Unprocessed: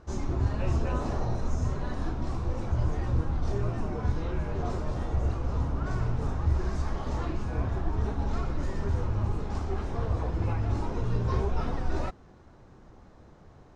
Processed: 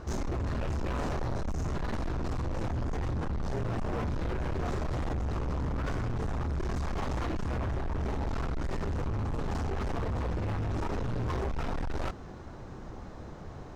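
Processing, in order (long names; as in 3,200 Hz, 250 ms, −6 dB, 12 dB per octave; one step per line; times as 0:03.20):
in parallel at −2.5 dB: compressor whose output falls as the input rises −34 dBFS, ratio −1
on the sum: hard clipping −31 dBFS, distortion −6 dB
level +1.5 dB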